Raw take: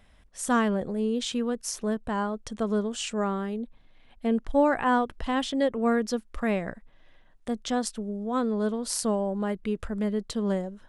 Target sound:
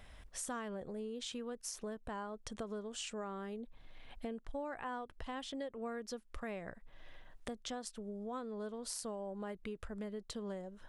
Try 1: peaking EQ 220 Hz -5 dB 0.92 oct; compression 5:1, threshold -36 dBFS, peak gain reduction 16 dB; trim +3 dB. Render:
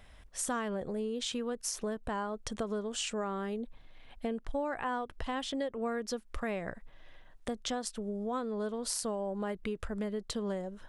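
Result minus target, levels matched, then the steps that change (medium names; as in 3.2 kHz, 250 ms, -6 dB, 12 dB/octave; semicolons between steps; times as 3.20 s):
compression: peak gain reduction -7.5 dB
change: compression 5:1, threshold -45.5 dBFS, peak gain reduction 23.5 dB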